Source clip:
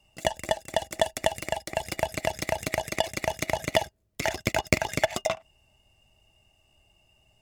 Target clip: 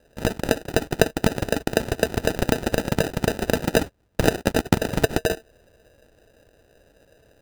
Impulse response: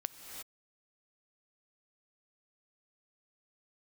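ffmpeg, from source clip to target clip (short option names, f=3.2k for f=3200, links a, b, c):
-filter_complex "[0:a]asplit=2[a][b];[b]alimiter=limit=-10dB:level=0:latency=1:release=256,volume=-1dB[c];[a][c]amix=inputs=2:normalize=0,crystalizer=i=2.5:c=0,acrusher=samples=40:mix=1:aa=0.000001,volume=-1dB"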